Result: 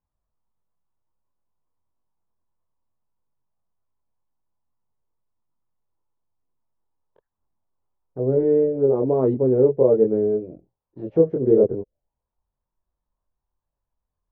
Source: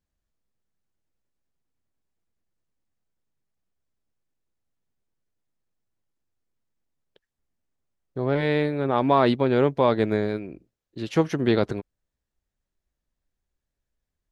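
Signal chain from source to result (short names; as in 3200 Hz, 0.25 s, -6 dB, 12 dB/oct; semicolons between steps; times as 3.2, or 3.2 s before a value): chorus voices 4, 0.52 Hz, delay 23 ms, depth 1.2 ms; envelope low-pass 450–1000 Hz down, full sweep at -28 dBFS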